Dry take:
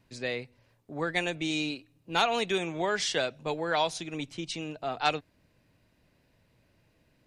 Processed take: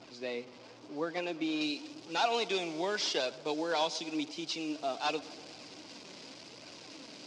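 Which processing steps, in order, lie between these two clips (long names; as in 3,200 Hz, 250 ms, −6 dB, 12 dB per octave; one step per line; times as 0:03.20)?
linear delta modulator 64 kbit/s, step −40 dBFS
loudspeaker in its box 240–6,300 Hz, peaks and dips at 300 Hz +6 dB, 1,300 Hz −3 dB, 1,800 Hz −8 dB, 4,900 Hz +6 dB
flanger 0.9 Hz, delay 1.2 ms, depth 4.2 ms, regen +59%
high-shelf EQ 3,300 Hz −6.5 dB, from 0:01.61 +5.5 dB
tape delay 115 ms, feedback 73%, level −18.5 dB, low-pass 2,400 Hz
level +1 dB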